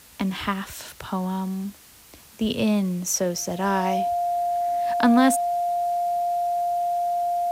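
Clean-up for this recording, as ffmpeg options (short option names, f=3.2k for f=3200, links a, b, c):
-af "bandreject=f=700:w=30,afftdn=nr=21:nf=-49"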